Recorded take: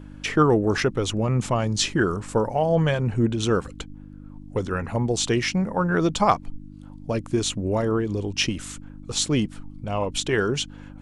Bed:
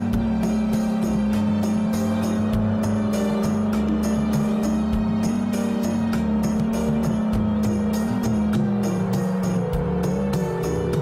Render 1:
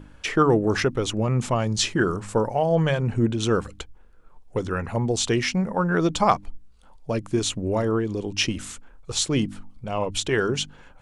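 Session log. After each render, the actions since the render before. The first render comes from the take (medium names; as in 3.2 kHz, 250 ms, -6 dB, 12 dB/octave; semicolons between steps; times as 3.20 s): de-hum 50 Hz, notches 6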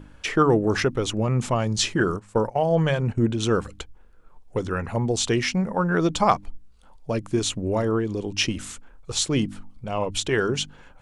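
2.00–3.30 s: gate -29 dBFS, range -14 dB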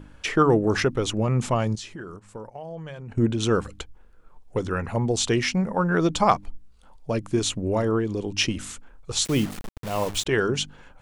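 1.75–3.12 s: compression 2.5:1, threshold -42 dBFS; 9.25–10.26 s: word length cut 6-bit, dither none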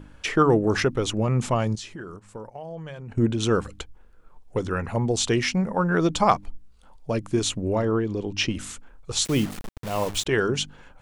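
7.73–8.55 s: distance through air 72 m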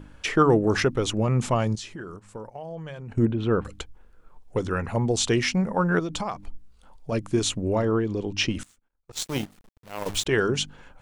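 3.25–3.65 s: distance through air 490 m; 5.99–7.12 s: compression, threshold -26 dBFS; 8.63–10.06 s: power-law waveshaper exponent 2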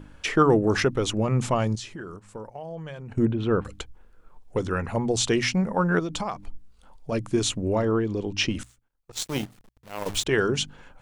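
hum notches 60/120 Hz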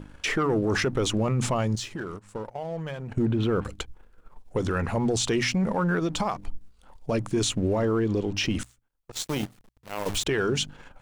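waveshaping leveller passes 1; peak limiter -17.5 dBFS, peak gain reduction 10.5 dB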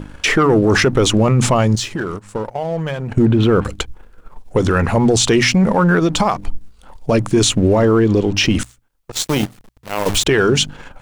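trim +11.5 dB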